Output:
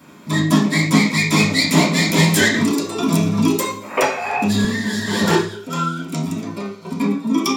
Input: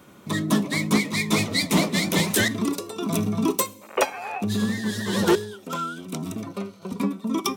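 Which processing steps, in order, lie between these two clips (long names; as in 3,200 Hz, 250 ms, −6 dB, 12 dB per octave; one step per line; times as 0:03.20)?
convolution reverb RT60 0.50 s, pre-delay 3 ms, DRR −5.5 dB
0:02.54–0:04.65: multiband upward and downward compressor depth 70%
level +1 dB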